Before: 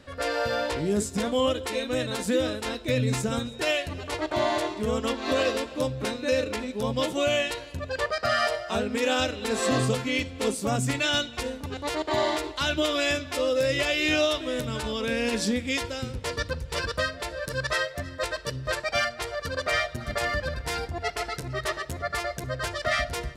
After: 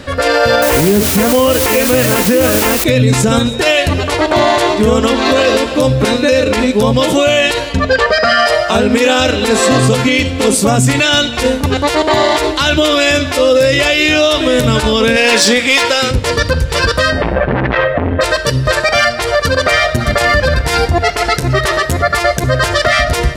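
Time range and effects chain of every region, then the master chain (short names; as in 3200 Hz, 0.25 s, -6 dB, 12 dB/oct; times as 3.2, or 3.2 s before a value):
0.62–2.84 steep low-pass 3000 Hz 72 dB/oct + requantised 6-bit, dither triangular
7.69–8.46 LPF 6000 Hz + comb 4.4 ms, depth 77%
15.16–16.11 HPF 360 Hz 6 dB/oct + overdrive pedal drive 12 dB, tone 6500 Hz, clips at -15.5 dBFS
17.12–18.21 steep low-pass 2900 Hz + low shelf 450 Hz +11.5 dB + core saturation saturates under 1000 Hz
whole clip: de-hum 311.9 Hz, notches 40; maximiser +22 dB; gain -1 dB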